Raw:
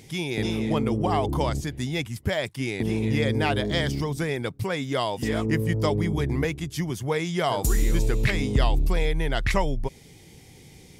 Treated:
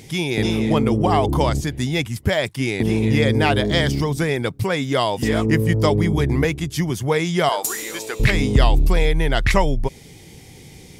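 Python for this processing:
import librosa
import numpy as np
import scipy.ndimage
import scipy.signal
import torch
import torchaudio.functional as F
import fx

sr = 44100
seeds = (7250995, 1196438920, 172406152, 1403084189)

y = fx.highpass(x, sr, hz=610.0, slope=12, at=(7.49, 8.2))
y = y * 10.0 ** (6.5 / 20.0)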